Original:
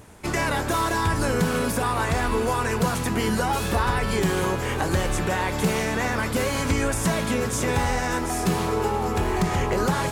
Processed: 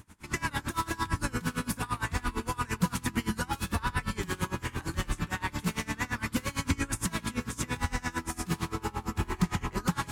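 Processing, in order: band shelf 550 Hz -10.5 dB 1.2 oct; dB-linear tremolo 8.8 Hz, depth 24 dB; gain -1.5 dB

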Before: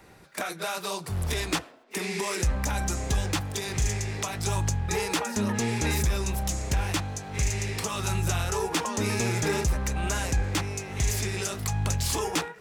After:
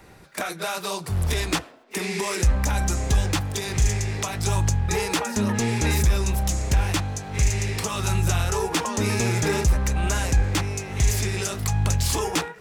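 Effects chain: low shelf 94 Hz +5 dB; gain +3 dB

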